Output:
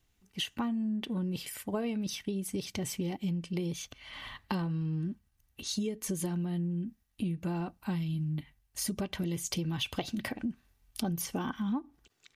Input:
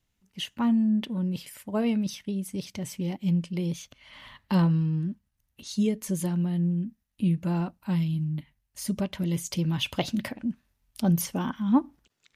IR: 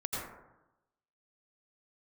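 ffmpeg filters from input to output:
-af "aecho=1:1:2.6:0.32,acompressor=threshold=-33dB:ratio=10,volume=3dB"

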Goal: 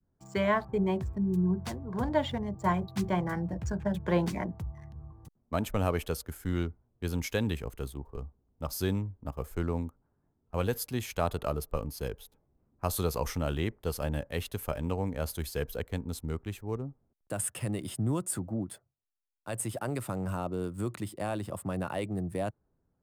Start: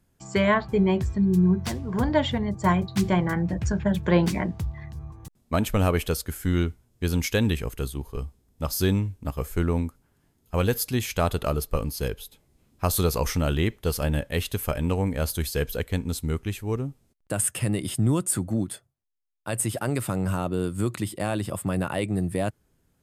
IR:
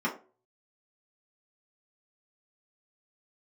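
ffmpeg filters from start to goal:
-filter_complex "[0:a]adynamicequalizer=threshold=0.01:dfrequency=800:dqfactor=0.85:tfrequency=800:tqfactor=0.85:attack=5:release=100:ratio=0.375:range=2:mode=boostabove:tftype=bell,acrossover=split=170|1500[a][b][c];[c]aeval=exprs='sgn(val(0))*max(abs(val(0))-0.00316,0)':c=same[d];[a][b][d]amix=inputs=3:normalize=0,volume=-8dB"

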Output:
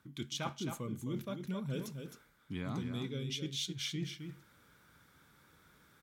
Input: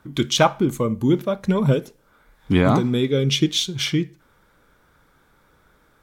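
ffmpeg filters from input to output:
-af "highpass=95,equalizer=f=620:w=0.57:g=-10,areverse,acompressor=threshold=-36dB:ratio=6,areverse,aecho=1:1:263:0.447,volume=-1.5dB"

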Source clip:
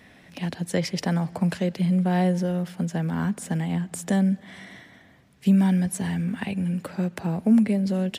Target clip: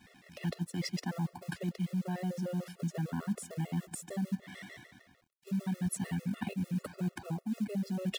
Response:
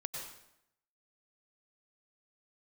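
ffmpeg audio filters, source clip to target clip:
-af "areverse,acompressor=threshold=-29dB:ratio=10,areverse,acrusher=bits=6:mode=log:mix=0:aa=0.000001,aeval=exprs='sgn(val(0))*max(abs(val(0))-0.0015,0)':c=same,afftfilt=real='re*gt(sin(2*PI*6.7*pts/sr)*(1-2*mod(floor(b*sr/1024/360),2)),0)':imag='im*gt(sin(2*PI*6.7*pts/sr)*(1-2*mod(floor(b*sr/1024/360),2)),0)':win_size=1024:overlap=0.75"

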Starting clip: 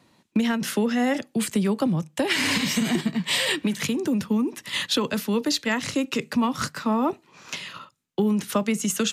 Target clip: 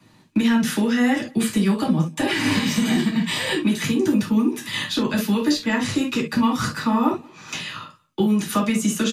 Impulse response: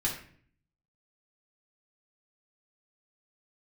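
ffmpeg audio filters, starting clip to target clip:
-filter_complex "[0:a]acrossover=split=190|1200[a][b][c];[a]acompressor=threshold=-38dB:ratio=4[d];[b]acompressor=threshold=-25dB:ratio=4[e];[c]acompressor=threshold=-31dB:ratio=4[f];[d][e][f]amix=inputs=3:normalize=0,asplit=2[g][h];[h]adelay=186.6,volume=-27dB,highshelf=f=4k:g=-4.2[i];[g][i]amix=inputs=2:normalize=0[j];[1:a]atrim=start_sample=2205,atrim=end_sample=3528[k];[j][k]afir=irnorm=-1:irlink=0"

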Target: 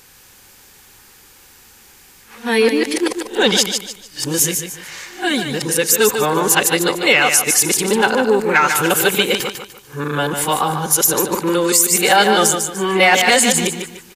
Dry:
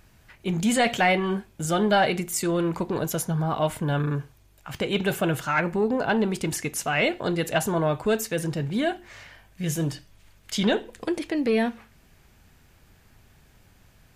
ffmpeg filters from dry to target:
-filter_complex "[0:a]areverse,asuperstop=centerf=650:order=4:qfactor=4.5,bass=f=250:g=-14,treble=f=4k:g=9,asplit=2[a][b];[b]aecho=0:1:148|296|444|592:0.447|0.143|0.0457|0.0146[c];[a][c]amix=inputs=2:normalize=0,alimiter=level_in=12dB:limit=-1dB:release=50:level=0:latency=1,volume=-1dB"

